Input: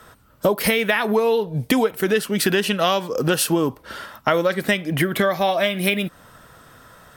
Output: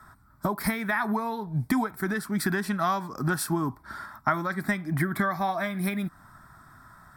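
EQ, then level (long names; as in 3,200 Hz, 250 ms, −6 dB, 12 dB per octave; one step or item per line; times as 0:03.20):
high-shelf EQ 4,800 Hz −8 dB
phaser with its sweep stopped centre 1,200 Hz, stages 4
notch filter 6,400 Hz, Q 8.7
−2.0 dB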